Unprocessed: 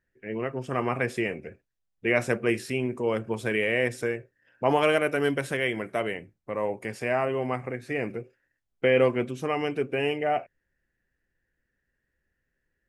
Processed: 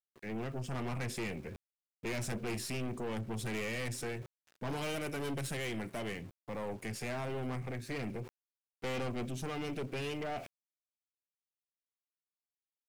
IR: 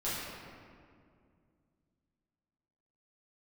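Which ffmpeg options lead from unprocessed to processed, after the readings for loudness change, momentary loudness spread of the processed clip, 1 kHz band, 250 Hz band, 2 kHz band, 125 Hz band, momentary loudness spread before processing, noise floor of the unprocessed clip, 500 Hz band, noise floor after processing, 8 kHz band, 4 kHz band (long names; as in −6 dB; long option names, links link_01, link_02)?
−11.5 dB, 8 LU, −12.5 dB, −9.0 dB, −13.0 dB, −4.0 dB, 10 LU, −80 dBFS, −14.5 dB, below −85 dBFS, +0.5 dB, −7.0 dB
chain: -filter_complex "[0:a]acrossover=split=270|3000[link_01][link_02][link_03];[link_02]acompressor=threshold=-60dB:ratio=1.5[link_04];[link_01][link_04][link_03]amix=inputs=3:normalize=0,aeval=exprs='(tanh(79.4*val(0)+0.35)-tanh(0.35))/79.4':channel_layout=same,aeval=exprs='val(0)*gte(abs(val(0)),0.00112)':channel_layout=same,areverse,acompressor=mode=upward:threshold=-46dB:ratio=2.5,areverse,volume=3.5dB"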